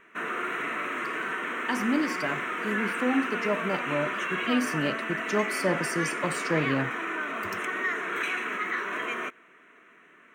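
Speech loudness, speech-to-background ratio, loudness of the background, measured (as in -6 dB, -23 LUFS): -30.5 LUFS, 0.0 dB, -30.5 LUFS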